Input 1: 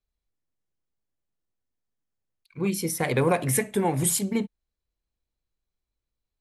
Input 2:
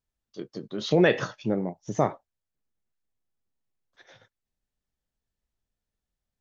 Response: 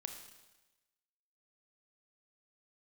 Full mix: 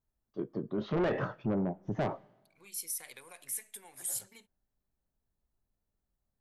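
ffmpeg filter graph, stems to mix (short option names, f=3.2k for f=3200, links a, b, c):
-filter_complex "[0:a]acompressor=threshold=-26dB:ratio=4,aderivative,volume=-4.5dB[a];[1:a]lowpass=1.2k,bandreject=f=490:w=12,asoftclip=type=tanh:threshold=-24dB,volume=2dB,asplit=2[b][c];[c]volume=-16.5dB[d];[2:a]atrim=start_sample=2205[e];[d][e]afir=irnorm=-1:irlink=0[f];[a][b][f]amix=inputs=3:normalize=0,alimiter=level_in=1.5dB:limit=-24dB:level=0:latency=1:release=16,volume=-1.5dB"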